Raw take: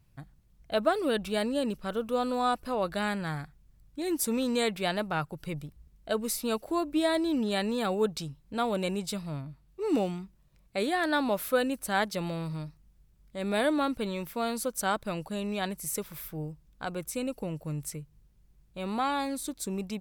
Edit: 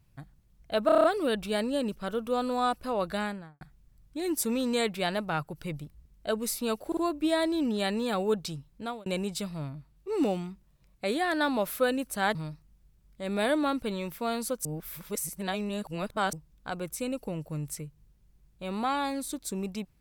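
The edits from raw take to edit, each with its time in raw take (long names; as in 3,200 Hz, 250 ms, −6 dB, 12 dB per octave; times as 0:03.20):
0:00.86: stutter 0.03 s, 7 plays
0:02.95–0:03.43: fade out and dull
0:06.69: stutter 0.05 s, 3 plays
0:08.44–0:08.78: fade out linear
0:12.07–0:12.50: remove
0:14.80–0:16.48: reverse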